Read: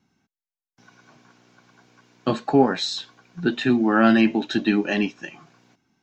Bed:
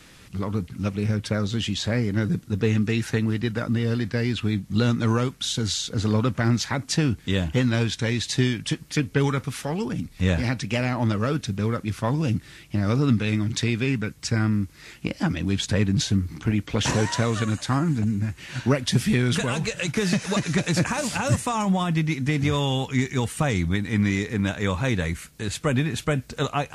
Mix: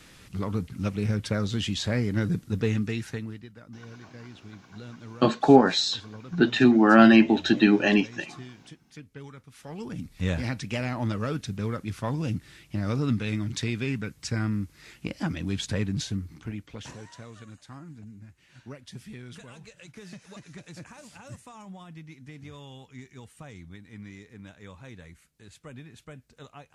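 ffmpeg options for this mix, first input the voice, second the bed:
-filter_complex "[0:a]adelay=2950,volume=1.19[s0];[1:a]volume=4.73,afade=t=out:st=2.52:d=0.96:silence=0.112202,afade=t=in:st=9.51:d=0.57:silence=0.158489,afade=t=out:st=15.66:d=1.3:silence=0.158489[s1];[s0][s1]amix=inputs=2:normalize=0"

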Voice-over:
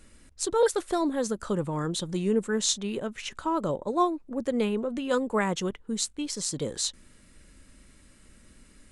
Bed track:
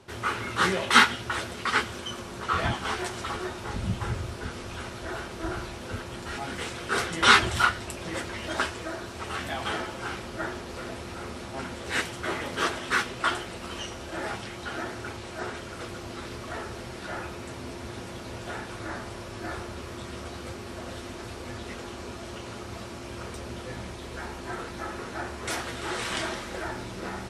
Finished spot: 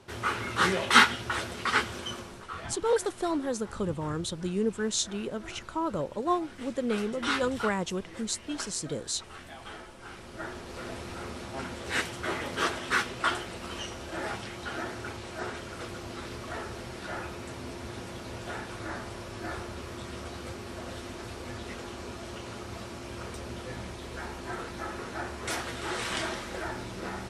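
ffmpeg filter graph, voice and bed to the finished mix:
-filter_complex "[0:a]adelay=2300,volume=0.708[s0];[1:a]volume=3.35,afade=t=out:st=2.11:d=0.36:silence=0.251189,afade=t=in:st=10:d=0.96:silence=0.266073[s1];[s0][s1]amix=inputs=2:normalize=0"

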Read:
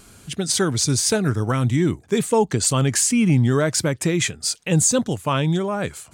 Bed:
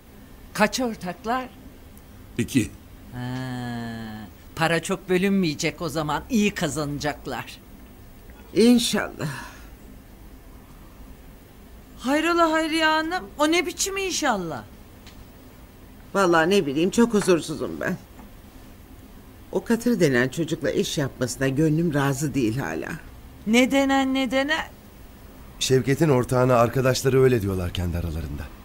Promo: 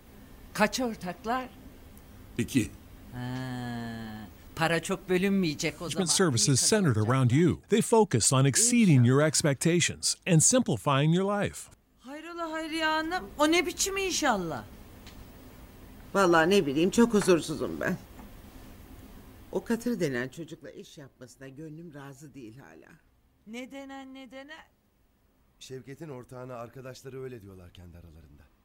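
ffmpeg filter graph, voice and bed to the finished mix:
-filter_complex "[0:a]adelay=5600,volume=0.631[s0];[1:a]volume=3.98,afade=t=out:st=5.62:d=0.56:silence=0.16788,afade=t=in:st=12.32:d=0.97:silence=0.141254,afade=t=out:st=19.07:d=1.65:silence=0.112202[s1];[s0][s1]amix=inputs=2:normalize=0"

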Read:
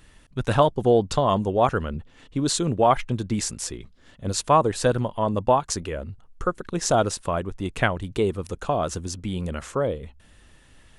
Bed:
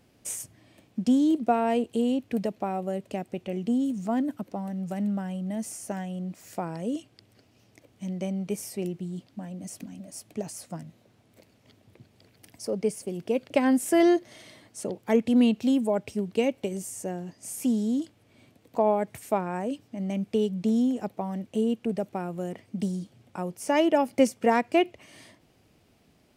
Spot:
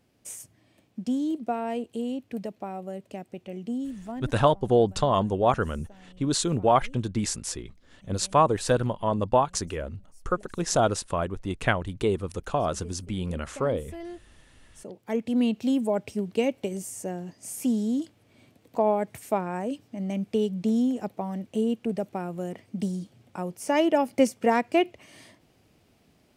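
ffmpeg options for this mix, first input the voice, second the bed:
-filter_complex "[0:a]adelay=3850,volume=0.794[s0];[1:a]volume=5.01,afade=t=out:st=3.81:d=0.78:silence=0.199526,afade=t=in:st=14.5:d=1.4:silence=0.105925[s1];[s0][s1]amix=inputs=2:normalize=0"

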